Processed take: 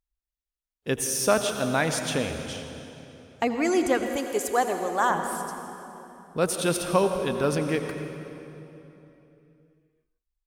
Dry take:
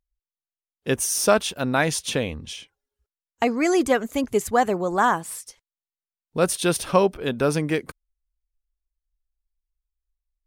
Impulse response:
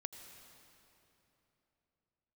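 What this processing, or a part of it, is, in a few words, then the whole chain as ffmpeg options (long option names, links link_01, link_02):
cave: -filter_complex "[0:a]aecho=1:1:165:0.126[link_01];[1:a]atrim=start_sample=2205[link_02];[link_01][link_02]afir=irnorm=-1:irlink=0,asettb=1/sr,asplit=3[link_03][link_04][link_05];[link_03]atrim=end=4.164[link_06];[link_04]atrim=start=4.16:end=5.1,asetpts=PTS-STARTPTS,afade=type=in:duration=0.004:curve=qsin,afade=type=out:start_time=0.936:duration=0.004:curve=qsin,bass=frequency=250:gain=-13,treble=frequency=4000:gain=4[link_07];[link_05]atrim=start=5.096[link_08];[link_06][link_07]acrossfade=duration=0.004:curve1=hsin:curve2=qsin[link_09];[link_09][link_08]acrossfade=duration=0.004:curve1=qsin:curve2=hsin"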